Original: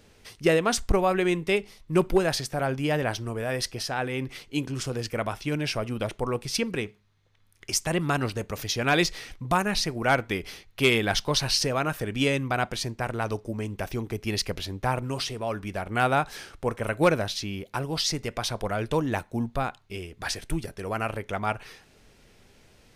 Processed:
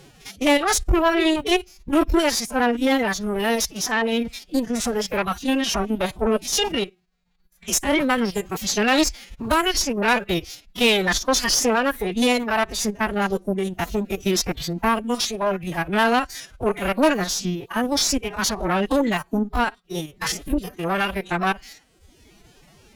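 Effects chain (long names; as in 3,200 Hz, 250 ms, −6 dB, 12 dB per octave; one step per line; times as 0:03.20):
spectrum averaged block by block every 50 ms
reverb reduction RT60 1.1 s
in parallel at +3 dB: brickwall limiter −19.5 dBFS, peak gain reduction 9 dB
on the sum: phase-vocoder pitch shift with formants kept +10 semitones
harmonic generator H 4 −19 dB, 5 −22 dB, 6 −30 dB, 8 −27 dB, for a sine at −6.5 dBFS
formants moved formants +2 semitones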